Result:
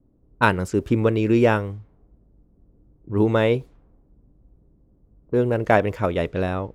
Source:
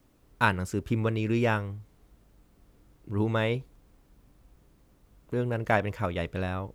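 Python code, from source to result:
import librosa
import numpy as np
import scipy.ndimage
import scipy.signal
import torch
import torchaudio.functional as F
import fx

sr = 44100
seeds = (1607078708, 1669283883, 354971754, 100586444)

y = fx.dynamic_eq(x, sr, hz=410.0, q=0.77, threshold_db=-40.0, ratio=4.0, max_db=7)
y = fx.env_lowpass(y, sr, base_hz=410.0, full_db=-23.5)
y = y * librosa.db_to_amplitude(4.0)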